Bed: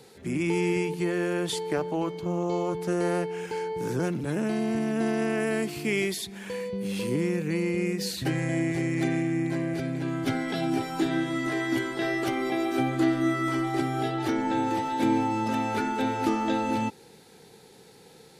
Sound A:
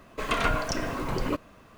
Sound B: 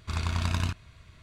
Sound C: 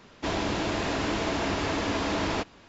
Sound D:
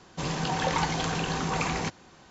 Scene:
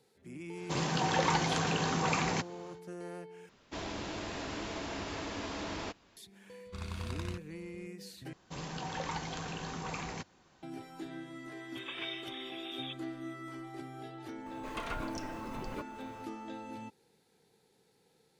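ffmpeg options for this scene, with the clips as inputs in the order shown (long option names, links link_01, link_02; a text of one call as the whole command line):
ffmpeg -i bed.wav -i cue0.wav -i cue1.wav -i cue2.wav -i cue3.wav -filter_complex "[4:a]asplit=2[link_01][link_02];[1:a]asplit=2[link_03][link_04];[0:a]volume=-17.5dB[link_05];[link_01]highpass=90[link_06];[3:a]highshelf=frequency=5100:gain=5.5[link_07];[link_03]lowpass=frequency=3100:width_type=q:width=0.5098,lowpass=frequency=3100:width_type=q:width=0.6013,lowpass=frequency=3100:width_type=q:width=0.9,lowpass=frequency=3100:width_type=q:width=2.563,afreqshift=-3700[link_08];[link_04]acompressor=mode=upward:threshold=-30dB:ratio=2.5:attack=3.2:release=140:knee=2.83:detection=peak[link_09];[link_05]asplit=3[link_10][link_11][link_12];[link_10]atrim=end=3.494[link_13];[link_07]atrim=end=2.68,asetpts=PTS-STARTPTS,volume=-11.5dB[link_14];[link_11]atrim=start=6.166:end=8.334[link_15];[link_02]atrim=end=2.3,asetpts=PTS-STARTPTS,volume=-11dB[link_16];[link_12]atrim=start=10.626[link_17];[link_06]atrim=end=2.3,asetpts=PTS-STARTPTS,volume=-2dB,afade=type=in:duration=0.1,afade=type=out:start_time=2.2:duration=0.1,adelay=520[link_18];[2:a]atrim=end=1.22,asetpts=PTS-STARTPTS,volume=-11.5dB,afade=type=in:duration=0.004:curve=hsin,afade=type=out:start_time=1.216:duration=0.004:curve=hsin,adelay=6650[link_19];[link_08]atrim=end=1.77,asetpts=PTS-STARTPTS,volume=-16.5dB,afade=type=in:duration=0.004:curve=hsin,afade=type=out:start_time=1.766:duration=0.004:curve=hsin,adelay=11570[link_20];[link_09]atrim=end=1.77,asetpts=PTS-STARTPTS,volume=-13.5dB,afade=type=in:duration=0.004:curve=hsin,afade=type=out:start_time=1.766:duration=0.004:curve=hsin,adelay=14460[link_21];[link_13][link_14]acrossfade=duration=0.004:curve1=hsin:curve2=hsin[link_22];[link_22][link_15]acrossfade=duration=0.004:curve1=hsin:curve2=hsin[link_23];[link_23][link_16]acrossfade=duration=0.004:curve1=hsin:curve2=hsin[link_24];[link_24][link_17]acrossfade=duration=0.004:curve1=hsin:curve2=hsin[link_25];[link_25][link_18][link_19][link_20][link_21]amix=inputs=5:normalize=0" out.wav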